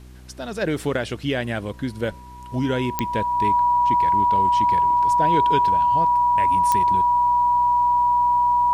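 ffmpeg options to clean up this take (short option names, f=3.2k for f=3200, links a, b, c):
-af "adeclick=t=4,bandreject=f=62.6:t=h:w=4,bandreject=f=125.2:t=h:w=4,bandreject=f=187.8:t=h:w=4,bandreject=f=250.4:t=h:w=4,bandreject=f=313:t=h:w=4,bandreject=f=375.6:t=h:w=4,bandreject=f=970:w=30,agate=range=-21dB:threshold=-30dB"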